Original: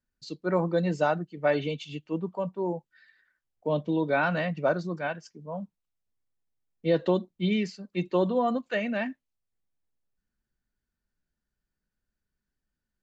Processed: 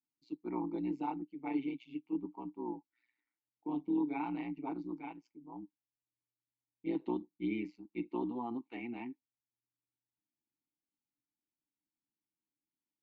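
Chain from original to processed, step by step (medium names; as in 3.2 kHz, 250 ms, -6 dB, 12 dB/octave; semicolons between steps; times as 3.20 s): AM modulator 120 Hz, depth 80%; vowel filter u; trim +4.5 dB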